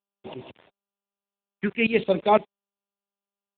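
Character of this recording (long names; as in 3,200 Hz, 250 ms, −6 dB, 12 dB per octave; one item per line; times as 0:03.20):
tremolo saw up 5.9 Hz, depth 95%
phaser sweep stages 4, 0.57 Hz, lowest notch 600–1,500 Hz
a quantiser's noise floor 10 bits, dither none
AMR narrowband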